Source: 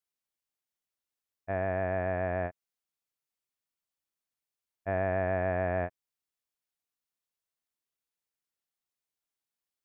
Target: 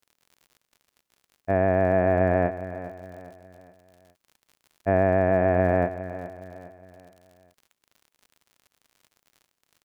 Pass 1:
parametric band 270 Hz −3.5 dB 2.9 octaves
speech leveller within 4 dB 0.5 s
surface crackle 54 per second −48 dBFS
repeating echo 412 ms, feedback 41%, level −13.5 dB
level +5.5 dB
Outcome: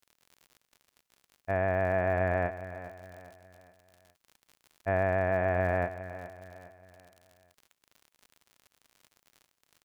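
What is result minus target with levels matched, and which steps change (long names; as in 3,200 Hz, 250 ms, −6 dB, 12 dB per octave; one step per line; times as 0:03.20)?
250 Hz band −4.5 dB
change: parametric band 270 Hz +8 dB 2.9 octaves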